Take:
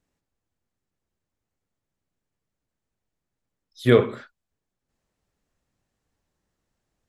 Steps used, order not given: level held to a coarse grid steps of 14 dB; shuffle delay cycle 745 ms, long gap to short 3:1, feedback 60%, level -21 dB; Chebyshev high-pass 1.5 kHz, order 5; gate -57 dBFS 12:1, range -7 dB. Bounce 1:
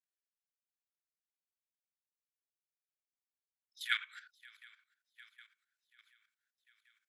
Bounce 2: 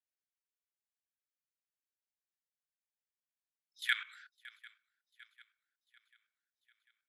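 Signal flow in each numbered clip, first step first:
shuffle delay > gate > level held to a coarse grid > Chebyshev high-pass; Chebyshev high-pass > level held to a coarse grid > shuffle delay > gate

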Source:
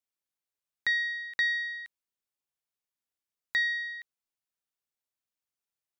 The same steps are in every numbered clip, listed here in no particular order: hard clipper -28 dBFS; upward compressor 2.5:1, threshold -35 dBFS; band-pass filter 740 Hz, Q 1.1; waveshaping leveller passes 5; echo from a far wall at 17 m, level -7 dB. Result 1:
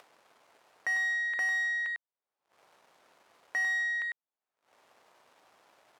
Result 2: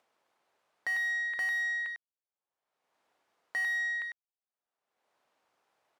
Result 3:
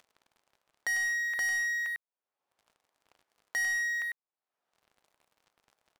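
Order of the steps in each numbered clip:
hard clipper > echo from a far wall > upward compressor > waveshaping leveller > band-pass filter; echo from a far wall > waveshaping leveller > upward compressor > band-pass filter > hard clipper; hard clipper > echo from a far wall > upward compressor > band-pass filter > waveshaping leveller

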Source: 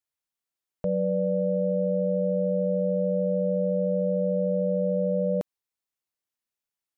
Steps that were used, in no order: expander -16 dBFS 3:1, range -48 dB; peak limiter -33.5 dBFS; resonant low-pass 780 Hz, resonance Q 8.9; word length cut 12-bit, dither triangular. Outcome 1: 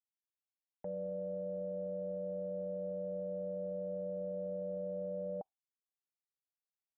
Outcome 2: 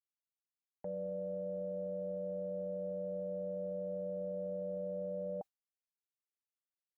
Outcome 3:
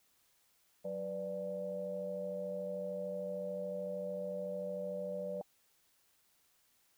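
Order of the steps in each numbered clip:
word length cut > resonant low-pass > expander > peak limiter; resonant low-pass > word length cut > expander > peak limiter; expander > resonant low-pass > peak limiter > word length cut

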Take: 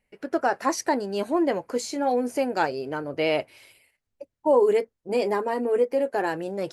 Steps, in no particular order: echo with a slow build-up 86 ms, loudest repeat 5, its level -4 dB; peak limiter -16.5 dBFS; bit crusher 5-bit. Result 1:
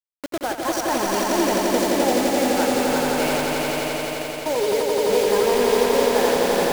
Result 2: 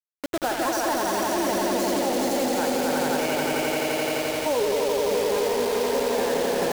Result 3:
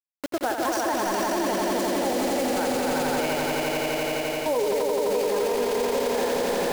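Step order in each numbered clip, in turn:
peak limiter > bit crusher > echo with a slow build-up; echo with a slow build-up > peak limiter > bit crusher; bit crusher > echo with a slow build-up > peak limiter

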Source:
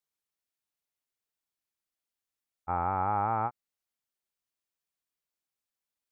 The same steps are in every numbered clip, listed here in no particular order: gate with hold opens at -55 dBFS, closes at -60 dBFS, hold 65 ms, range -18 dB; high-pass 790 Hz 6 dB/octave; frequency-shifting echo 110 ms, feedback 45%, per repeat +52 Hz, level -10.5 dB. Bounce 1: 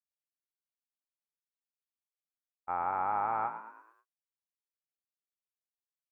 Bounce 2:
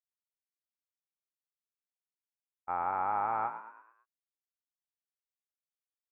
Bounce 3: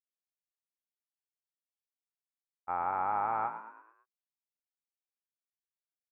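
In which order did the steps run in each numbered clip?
frequency-shifting echo > high-pass > gate with hold; high-pass > gate with hold > frequency-shifting echo; gate with hold > frequency-shifting echo > high-pass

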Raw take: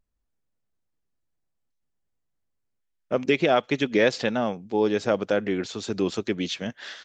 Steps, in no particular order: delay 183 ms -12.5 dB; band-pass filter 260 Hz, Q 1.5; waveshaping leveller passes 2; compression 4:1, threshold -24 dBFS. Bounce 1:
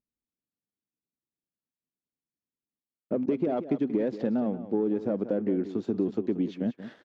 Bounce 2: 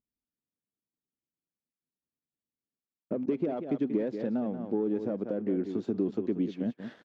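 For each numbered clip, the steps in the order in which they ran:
waveshaping leveller > band-pass filter > compression > delay; delay > waveshaping leveller > compression > band-pass filter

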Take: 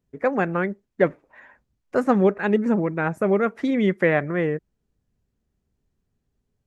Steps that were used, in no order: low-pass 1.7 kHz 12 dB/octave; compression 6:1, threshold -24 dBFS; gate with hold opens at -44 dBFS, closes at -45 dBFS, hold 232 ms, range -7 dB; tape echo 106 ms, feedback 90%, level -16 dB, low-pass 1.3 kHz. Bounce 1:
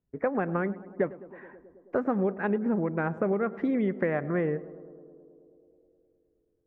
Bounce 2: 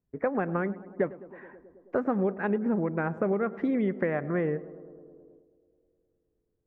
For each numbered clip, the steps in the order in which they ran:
gate with hold > low-pass > compression > tape echo; compression > low-pass > tape echo > gate with hold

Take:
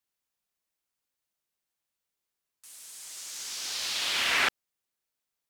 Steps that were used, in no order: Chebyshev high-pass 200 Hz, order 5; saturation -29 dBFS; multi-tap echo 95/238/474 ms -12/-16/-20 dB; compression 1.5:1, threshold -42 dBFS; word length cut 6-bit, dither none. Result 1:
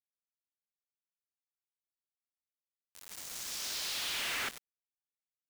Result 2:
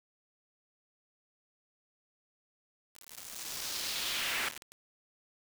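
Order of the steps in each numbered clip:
Chebyshev high-pass > saturation > multi-tap echo > word length cut > compression; compression > multi-tap echo > saturation > Chebyshev high-pass > word length cut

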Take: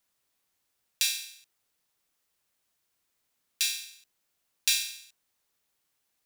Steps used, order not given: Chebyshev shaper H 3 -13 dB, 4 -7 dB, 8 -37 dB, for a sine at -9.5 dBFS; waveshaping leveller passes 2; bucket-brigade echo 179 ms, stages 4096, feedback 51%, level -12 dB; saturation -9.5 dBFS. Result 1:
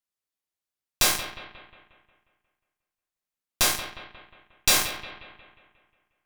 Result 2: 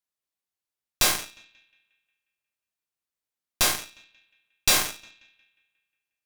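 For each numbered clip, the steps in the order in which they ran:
waveshaping leveller > Chebyshev shaper > bucket-brigade echo > saturation; waveshaping leveller > bucket-brigade echo > Chebyshev shaper > saturation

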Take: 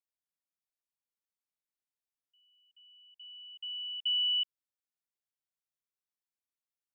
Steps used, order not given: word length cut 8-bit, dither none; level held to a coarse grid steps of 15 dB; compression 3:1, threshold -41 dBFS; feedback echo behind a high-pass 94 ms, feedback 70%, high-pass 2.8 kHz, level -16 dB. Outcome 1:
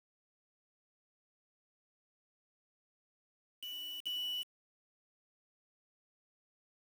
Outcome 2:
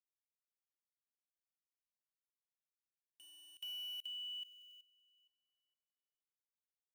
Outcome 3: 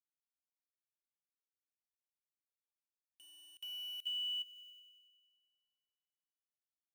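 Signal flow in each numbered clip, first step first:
level held to a coarse grid > feedback echo behind a high-pass > compression > word length cut; word length cut > feedback echo behind a high-pass > compression > level held to a coarse grid; word length cut > level held to a coarse grid > feedback echo behind a high-pass > compression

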